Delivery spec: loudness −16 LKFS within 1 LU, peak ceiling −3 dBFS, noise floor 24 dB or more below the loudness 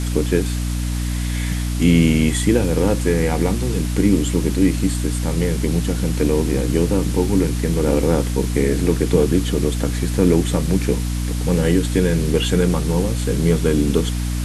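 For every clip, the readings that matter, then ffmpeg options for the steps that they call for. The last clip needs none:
mains hum 60 Hz; hum harmonics up to 300 Hz; level of the hum −20 dBFS; background noise floor −22 dBFS; target noise floor −43 dBFS; integrated loudness −19.0 LKFS; sample peak −2.5 dBFS; target loudness −16.0 LKFS
→ -af "bandreject=frequency=60:width_type=h:width=4,bandreject=frequency=120:width_type=h:width=4,bandreject=frequency=180:width_type=h:width=4,bandreject=frequency=240:width_type=h:width=4,bandreject=frequency=300:width_type=h:width=4"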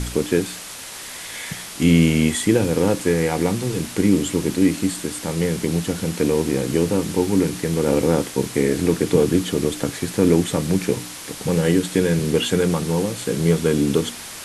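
mains hum none found; background noise floor −35 dBFS; target noise floor −45 dBFS
→ -af "afftdn=noise_reduction=10:noise_floor=-35"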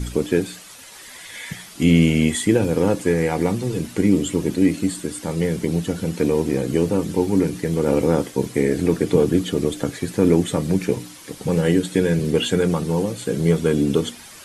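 background noise floor −42 dBFS; target noise floor −45 dBFS
→ -af "afftdn=noise_reduction=6:noise_floor=-42"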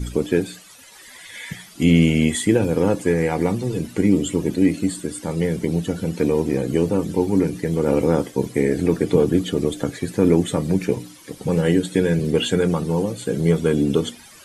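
background noise floor −45 dBFS; integrated loudness −20.5 LKFS; sample peak −3.5 dBFS; target loudness −16.0 LKFS
→ -af "volume=4.5dB,alimiter=limit=-3dB:level=0:latency=1"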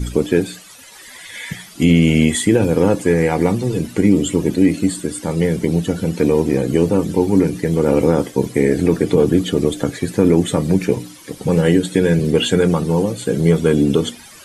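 integrated loudness −16.5 LKFS; sample peak −3.0 dBFS; background noise floor −41 dBFS

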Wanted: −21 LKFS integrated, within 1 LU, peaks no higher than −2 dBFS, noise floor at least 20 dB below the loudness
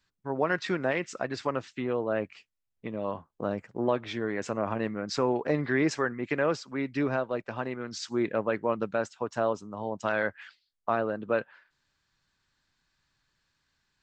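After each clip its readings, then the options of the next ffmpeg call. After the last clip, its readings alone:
integrated loudness −30.5 LKFS; sample peak −13.5 dBFS; target loudness −21.0 LKFS
→ -af "volume=9.5dB"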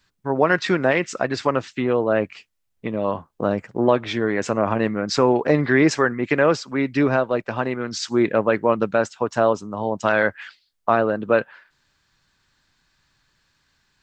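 integrated loudness −21.5 LKFS; sample peak −4.0 dBFS; background noise floor −72 dBFS

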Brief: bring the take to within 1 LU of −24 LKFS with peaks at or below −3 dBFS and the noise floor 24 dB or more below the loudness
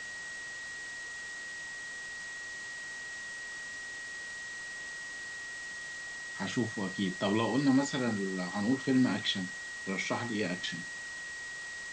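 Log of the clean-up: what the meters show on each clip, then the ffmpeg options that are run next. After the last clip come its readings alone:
interfering tone 1,900 Hz; level of the tone −40 dBFS; background noise floor −42 dBFS; target noise floor −59 dBFS; integrated loudness −35.0 LKFS; sample peak −17.5 dBFS; target loudness −24.0 LKFS
→ -af "bandreject=frequency=1900:width=30"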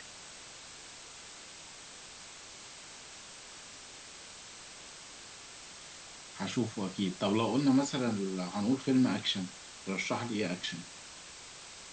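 interfering tone none found; background noise floor −50 dBFS; target noise floor −57 dBFS
→ -af "afftdn=noise_reduction=7:noise_floor=-50"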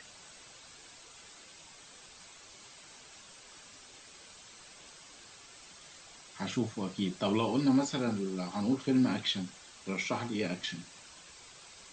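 background noise floor −54 dBFS; target noise floor −57 dBFS
→ -af "afftdn=noise_reduction=6:noise_floor=-54"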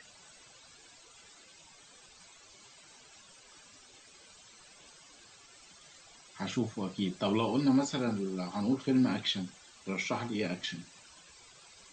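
background noise floor −58 dBFS; integrated loudness −32.5 LKFS; sample peak −17.5 dBFS; target loudness −24.0 LKFS
→ -af "volume=8.5dB"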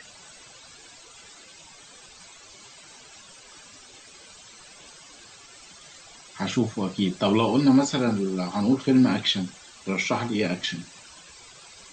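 integrated loudness −24.0 LKFS; sample peak −9.0 dBFS; background noise floor −49 dBFS

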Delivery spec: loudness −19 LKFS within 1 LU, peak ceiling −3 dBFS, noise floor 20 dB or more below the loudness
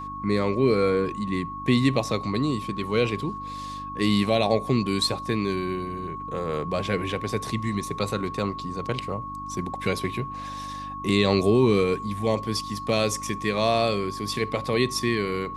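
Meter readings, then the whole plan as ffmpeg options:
mains hum 50 Hz; hum harmonics up to 300 Hz; level of the hum −41 dBFS; interfering tone 1,100 Hz; level of the tone −33 dBFS; integrated loudness −25.5 LKFS; sample peak −8.0 dBFS; target loudness −19.0 LKFS
→ -af "bandreject=frequency=50:width_type=h:width=4,bandreject=frequency=100:width_type=h:width=4,bandreject=frequency=150:width_type=h:width=4,bandreject=frequency=200:width_type=h:width=4,bandreject=frequency=250:width_type=h:width=4,bandreject=frequency=300:width_type=h:width=4"
-af "bandreject=frequency=1100:width=30"
-af "volume=6.5dB,alimiter=limit=-3dB:level=0:latency=1"

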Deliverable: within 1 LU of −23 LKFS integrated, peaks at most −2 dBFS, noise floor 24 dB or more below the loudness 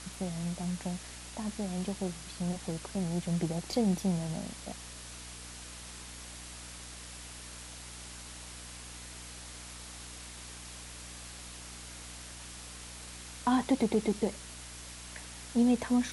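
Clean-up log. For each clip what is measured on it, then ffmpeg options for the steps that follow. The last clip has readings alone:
mains hum 60 Hz; hum harmonics up to 300 Hz; level of the hum −49 dBFS; background noise floor −47 dBFS; target noise floor −60 dBFS; integrated loudness −36.0 LKFS; sample peak −17.0 dBFS; target loudness −23.0 LKFS
→ -af "bandreject=frequency=60:width_type=h:width=4,bandreject=frequency=120:width_type=h:width=4,bandreject=frequency=180:width_type=h:width=4,bandreject=frequency=240:width_type=h:width=4,bandreject=frequency=300:width_type=h:width=4"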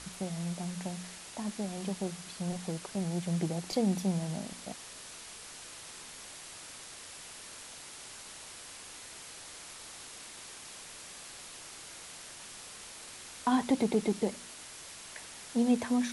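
mains hum none found; background noise floor −48 dBFS; target noise floor −61 dBFS
→ -af "afftdn=noise_reduction=13:noise_floor=-48"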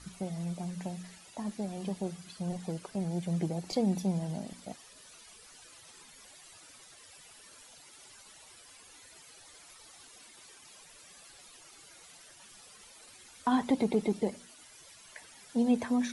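background noise floor −55 dBFS; target noise floor −58 dBFS
→ -af "afftdn=noise_reduction=6:noise_floor=-55"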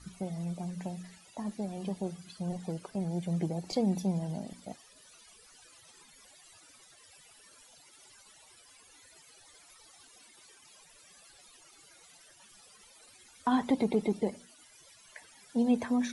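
background noise floor −59 dBFS; integrated loudness −33.5 LKFS; sample peak −17.0 dBFS; target loudness −23.0 LKFS
→ -af "volume=10.5dB"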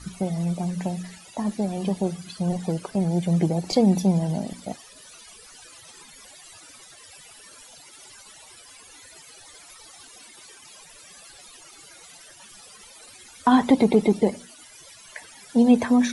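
integrated loudness −23.0 LKFS; sample peak −6.5 dBFS; background noise floor −48 dBFS

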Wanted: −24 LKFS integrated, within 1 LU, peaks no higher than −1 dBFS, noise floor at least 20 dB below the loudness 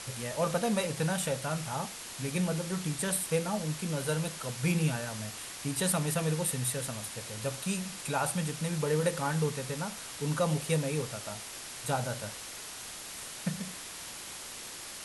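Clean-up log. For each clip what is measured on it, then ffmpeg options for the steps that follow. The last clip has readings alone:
background noise floor −44 dBFS; target noise floor −53 dBFS; integrated loudness −33.0 LKFS; sample peak −16.0 dBFS; target loudness −24.0 LKFS
→ -af "afftdn=noise_reduction=9:noise_floor=-44"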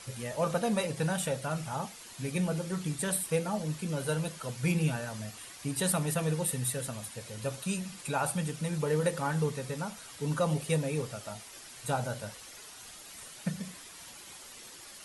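background noise floor −49 dBFS; target noise floor −53 dBFS
→ -af "afftdn=noise_reduction=6:noise_floor=-49"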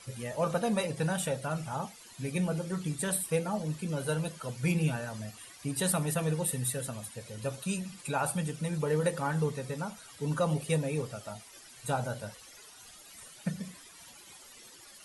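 background noise floor −53 dBFS; integrated loudness −33.0 LKFS; sample peak −16.0 dBFS; target loudness −24.0 LKFS
→ -af "volume=9dB"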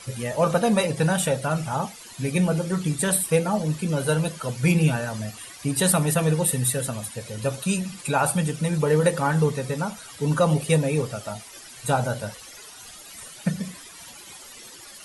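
integrated loudness −24.0 LKFS; sample peak −7.0 dBFS; background noise floor −44 dBFS

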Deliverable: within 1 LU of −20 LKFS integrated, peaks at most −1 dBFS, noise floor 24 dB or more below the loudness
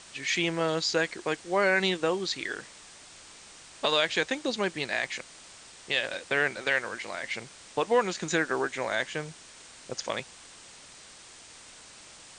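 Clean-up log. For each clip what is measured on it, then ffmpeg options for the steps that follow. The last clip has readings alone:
background noise floor −50 dBFS; target noise floor −53 dBFS; integrated loudness −29.0 LKFS; sample peak −11.0 dBFS; target loudness −20.0 LKFS
→ -af "afftdn=noise_reduction=6:noise_floor=-50"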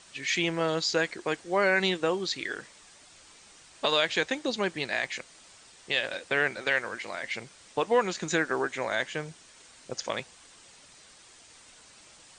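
background noise floor −55 dBFS; integrated loudness −29.0 LKFS; sample peak −11.0 dBFS; target loudness −20.0 LKFS
→ -af "volume=9dB"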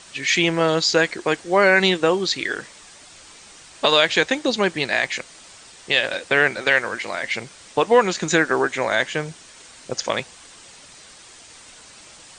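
integrated loudness −20.0 LKFS; sample peak −2.0 dBFS; background noise floor −46 dBFS

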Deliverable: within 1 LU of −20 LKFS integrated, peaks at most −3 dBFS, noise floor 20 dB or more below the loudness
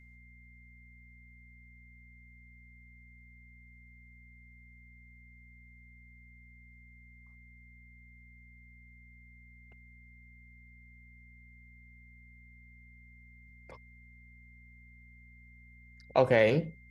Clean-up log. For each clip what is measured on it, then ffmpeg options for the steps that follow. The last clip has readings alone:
mains hum 60 Hz; hum harmonics up to 240 Hz; level of the hum −55 dBFS; interfering tone 2,100 Hz; level of the tone −58 dBFS; integrated loudness −27.0 LKFS; sample peak −11.5 dBFS; target loudness −20.0 LKFS
→ -af "bandreject=frequency=60:width_type=h:width=4,bandreject=frequency=120:width_type=h:width=4,bandreject=frequency=180:width_type=h:width=4,bandreject=frequency=240:width_type=h:width=4"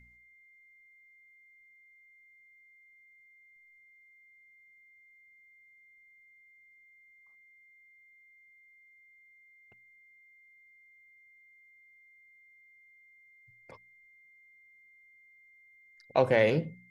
mains hum none found; interfering tone 2,100 Hz; level of the tone −58 dBFS
→ -af "bandreject=frequency=2100:width=30"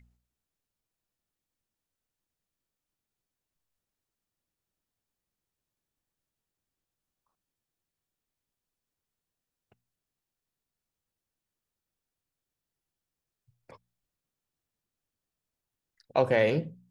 interfering tone none found; integrated loudness −27.0 LKFS; sample peak −11.5 dBFS; target loudness −20.0 LKFS
→ -af "volume=7dB"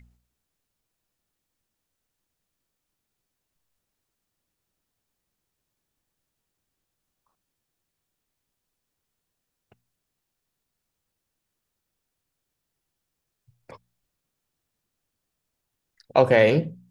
integrated loudness −20.0 LKFS; sample peak −4.5 dBFS; background noise floor −82 dBFS

